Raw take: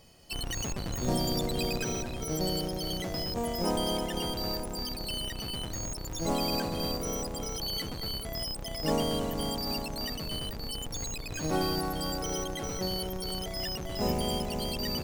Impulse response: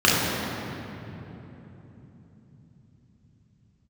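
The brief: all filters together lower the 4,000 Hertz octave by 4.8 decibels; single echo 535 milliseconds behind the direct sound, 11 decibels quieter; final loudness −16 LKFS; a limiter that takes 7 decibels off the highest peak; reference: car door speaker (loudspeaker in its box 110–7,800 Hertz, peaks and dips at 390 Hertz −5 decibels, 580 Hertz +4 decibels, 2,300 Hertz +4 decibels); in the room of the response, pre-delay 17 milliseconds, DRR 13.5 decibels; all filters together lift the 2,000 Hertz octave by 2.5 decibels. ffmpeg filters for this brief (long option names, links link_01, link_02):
-filter_complex "[0:a]equalizer=frequency=2000:width_type=o:gain=3.5,equalizer=frequency=4000:width_type=o:gain=-8,alimiter=limit=-23.5dB:level=0:latency=1,aecho=1:1:535:0.282,asplit=2[link_01][link_02];[1:a]atrim=start_sample=2205,adelay=17[link_03];[link_02][link_03]afir=irnorm=-1:irlink=0,volume=-36dB[link_04];[link_01][link_04]amix=inputs=2:normalize=0,highpass=110,equalizer=frequency=390:width_type=q:width=4:gain=-5,equalizer=frequency=580:width_type=q:width=4:gain=4,equalizer=frequency=2300:width_type=q:width=4:gain=4,lowpass=frequency=7800:width=0.5412,lowpass=frequency=7800:width=1.3066,volume=18.5dB"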